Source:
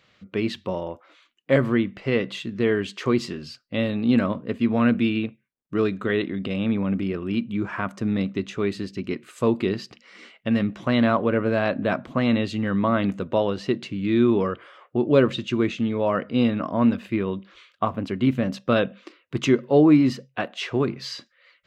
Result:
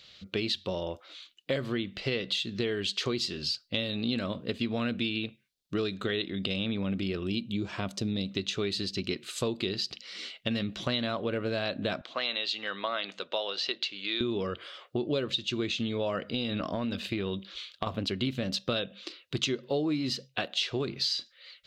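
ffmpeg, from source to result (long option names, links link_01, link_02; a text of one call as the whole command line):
ffmpeg -i in.wav -filter_complex "[0:a]asettb=1/sr,asplit=3[link_01][link_02][link_03];[link_01]atrim=end=7.274[link_04];[link_02]atrim=start=7.27:end=8.31,asetpts=PTS-STARTPTS,afade=type=in:duration=0.004:curve=qsin,afade=type=out:start_time=1.036:duration=0.004:curve=qsin,equalizer=frequency=1500:width_type=o:width=1.3:gain=-9.5[link_05];[link_03]atrim=start=8.306[link_06];[link_04][link_05]acrossfade=duration=0.004:curve1=hsin:curve2=qsin[link_07];[link_07][link_06]acrossfade=duration=0.004:curve1=qsin:curve2=hsin,asettb=1/sr,asplit=3[link_08][link_09][link_10];[link_08]atrim=end=12.014[link_11];[link_09]atrim=start=12.01:end=14.21,asetpts=PTS-STARTPTS,afade=type=in:duration=0.004:curve=qsin,afade=type=out:start_time=2.196:duration=0.004:curve=qsin,highpass=690,lowpass=5000[link_12];[link_10]atrim=start=14.206[link_13];[link_11][link_12]acrossfade=duration=0.004:curve1=hsin:curve2=qsin[link_14];[link_14][link_13]acrossfade=duration=0.004:curve1=qsin:curve2=hsin,asettb=1/sr,asplit=3[link_15][link_16][link_17];[link_15]atrim=end=16.314[link_18];[link_16]atrim=start=16.31:end=17.87,asetpts=PTS-STARTPTS,afade=type=in:duration=0.004:curve=qsin,afade=type=out:start_time=1.556:duration=0.004:curve=qsin,acompressor=threshold=-22dB:ratio=6:attack=3.2:release=140:knee=1:detection=peak[link_19];[link_17]atrim=start=17.866[link_20];[link_18][link_19]acrossfade=duration=0.004:curve1=hsin:curve2=qsin[link_21];[link_21][link_20]acrossfade=duration=0.004:curve1=qsin:curve2=hsin,equalizer=frequency=125:width_type=o:width=1:gain=-6,equalizer=frequency=250:width_type=o:width=1:gain=-8,equalizer=frequency=500:width_type=o:width=1:gain=-3,equalizer=frequency=1000:width_type=o:width=1:gain=-9,equalizer=frequency=2000:width_type=o:width=1:gain=-6,equalizer=frequency=4000:width_type=o:width=1:gain=11,acompressor=threshold=-33dB:ratio=6,volume=5.5dB" out.wav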